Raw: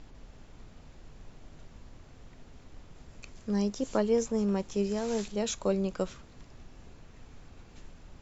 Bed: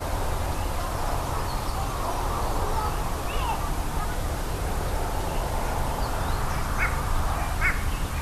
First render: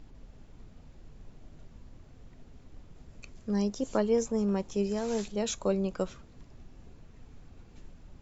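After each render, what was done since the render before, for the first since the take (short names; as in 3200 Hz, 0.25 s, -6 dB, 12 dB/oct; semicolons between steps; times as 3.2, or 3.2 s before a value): denoiser 6 dB, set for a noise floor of -53 dBFS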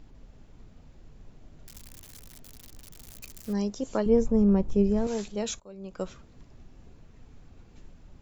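1.66–3.53 switching spikes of -32.5 dBFS; 4.06–5.07 tilt -3.5 dB/oct; 5.6–6.07 fade in quadratic, from -22.5 dB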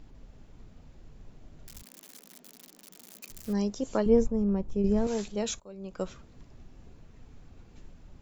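1.82–3.3 elliptic high-pass 180 Hz; 4.27–4.84 gain -6 dB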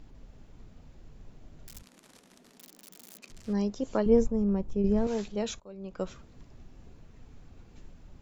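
1.79–2.58 CVSD 64 kbps; 3.18–4.12 air absorption 85 m; 4.73–6.07 air absorption 82 m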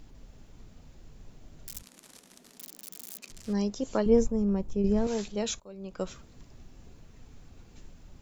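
high shelf 4200 Hz +9 dB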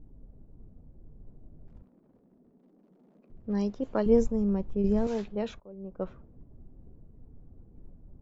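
low-pass opened by the level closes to 380 Hz, open at -21.5 dBFS; high shelf 3000 Hz -8 dB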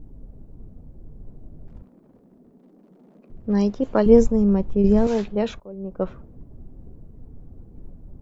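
gain +9 dB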